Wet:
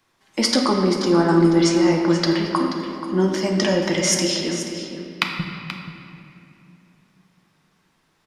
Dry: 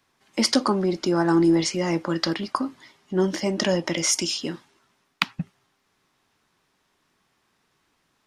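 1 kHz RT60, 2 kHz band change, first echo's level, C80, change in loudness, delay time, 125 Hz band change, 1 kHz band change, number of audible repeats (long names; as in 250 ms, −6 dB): 2.4 s, +4.0 dB, −11.5 dB, 3.5 dB, +4.0 dB, 481 ms, +5.5 dB, +4.0 dB, 1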